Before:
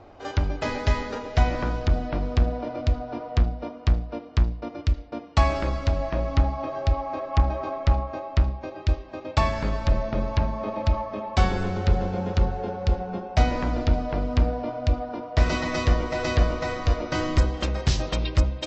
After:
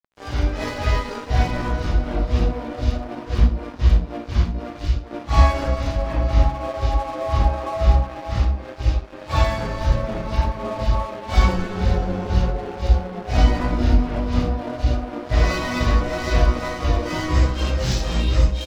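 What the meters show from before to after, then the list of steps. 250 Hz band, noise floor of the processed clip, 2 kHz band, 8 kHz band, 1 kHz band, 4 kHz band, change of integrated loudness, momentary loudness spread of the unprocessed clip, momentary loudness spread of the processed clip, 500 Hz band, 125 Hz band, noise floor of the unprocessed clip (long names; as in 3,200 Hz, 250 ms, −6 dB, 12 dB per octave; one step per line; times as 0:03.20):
+3.5 dB, −36 dBFS, +3.0 dB, can't be measured, +3.0 dB, +3.5 dB, +4.0 dB, 4 LU, 6 LU, +2.0 dB, +4.0 dB, −42 dBFS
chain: random phases in long frames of 200 ms
ambience of single reflections 17 ms −7.5 dB, 61 ms −10.5 dB
dead-zone distortion −38.5 dBFS
level +3 dB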